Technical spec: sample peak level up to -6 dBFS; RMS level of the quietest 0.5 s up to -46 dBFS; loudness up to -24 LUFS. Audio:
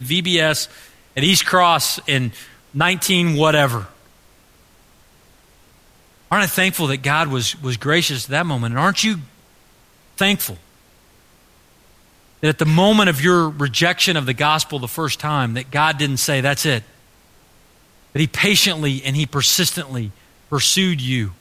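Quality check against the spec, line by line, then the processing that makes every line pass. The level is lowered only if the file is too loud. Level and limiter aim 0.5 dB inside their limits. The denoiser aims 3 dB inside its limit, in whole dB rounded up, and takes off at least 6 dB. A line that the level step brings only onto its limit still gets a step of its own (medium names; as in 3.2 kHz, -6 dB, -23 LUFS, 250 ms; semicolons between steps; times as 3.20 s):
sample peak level -2.5 dBFS: fail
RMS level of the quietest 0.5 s -52 dBFS: pass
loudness -17.0 LUFS: fail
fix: trim -7.5 dB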